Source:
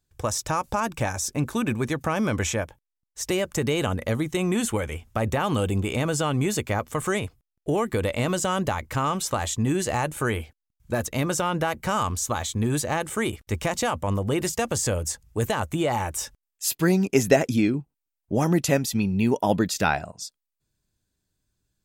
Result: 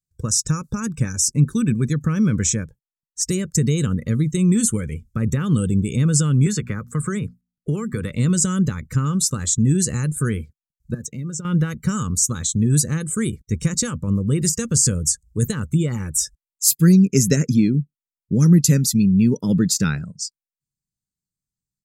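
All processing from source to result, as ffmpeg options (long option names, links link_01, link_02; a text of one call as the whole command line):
ffmpeg -i in.wav -filter_complex "[0:a]asettb=1/sr,asplit=3[link_01][link_02][link_03];[link_01]atrim=end=6.464[link_04];[link_02]atrim=start=6.46:end=8.11,asetpts=PTS-STARTPTS,afade=type=in:duration=0.004:curve=qsin,afade=type=out:start_time=1.646:duration=0.004:curve=qsin,equalizer=frequency=1300:width_type=o:width=2.2:gain=10.5,bandreject=frequency=59.58:width_type=h:width=4,bandreject=frequency=119.16:width_type=h:width=4,bandreject=frequency=178.74:width_type=h:width=4,bandreject=frequency=238.32:width_type=h:width=4,acrossover=split=320|780|5300[link_05][link_06][link_07][link_08];[link_05]acompressor=threshold=-30dB:ratio=3[link_09];[link_06]acompressor=threshold=-33dB:ratio=3[link_10];[link_07]acompressor=threshold=-32dB:ratio=3[link_11];[link_08]acompressor=threshold=-41dB:ratio=3[link_12];[link_09][link_10][link_11][link_12]amix=inputs=4:normalize=0[link_13];[link_03]atrim=start=8.106[link_14];[link_04][link_13]acrossfade=duration=0.004:curve1=hsin:curve2=qsin[link_15];[link_15][link_14]acrossfade=duration=0.004:curve1=qsin:curve2=hsin,asettb=1/sr,asplit=3[link_16][link_17][link_18];[link_16]atrim=end=10.944[link_19];[link_17]atrim=start=10.94:end=11.45,asetpts=PTS-STARTPTS,afade=type=in:duration=0.004:curve=qsin,afade=type=out:start_time=0.506:duration=0.004:curve=qsin,highpass=100,equalizer=frequency=11000:width_type=o:width=0.24:gain=-12.5,acompressor=threshold=-31dB:ratio=16:attack=3.2:release=140:knee=1:detection=peak[link_20];[link_18]atrim=start=11.446[link_21];[link_19][link_20]acrossfade=duration=0.004:curve1=hsin:curve2=qsin[link_22];[link_22][link_21]acrossfade=duration=0.004:curve1=qsin:curve2=hsin,afftdn=noise_reduction=20:noise_floor=-39,firequalizer=gain_entry='entry(100,0);entry(150,10);entry(310,-4);entry(470,-5);entry(700,-28);entry(1300,-6);entry(3000,-10);entry(4200,3);entry(7400,8);entry(12000,6)':delay=0.05:min_phase=1,volume=3.5dB" out.wav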